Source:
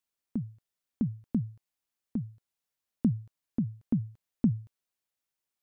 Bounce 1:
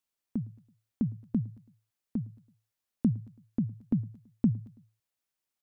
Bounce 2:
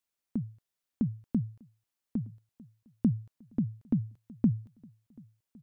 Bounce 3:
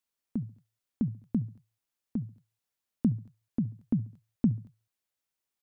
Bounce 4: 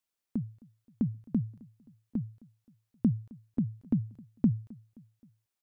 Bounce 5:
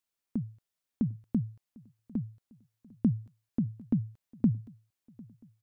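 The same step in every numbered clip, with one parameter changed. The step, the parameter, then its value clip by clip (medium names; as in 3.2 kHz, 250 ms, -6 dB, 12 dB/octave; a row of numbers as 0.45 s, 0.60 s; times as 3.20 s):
feedback delay, time: 110 ms, 1252 ms, 69 ms, 263 ms, 750 ms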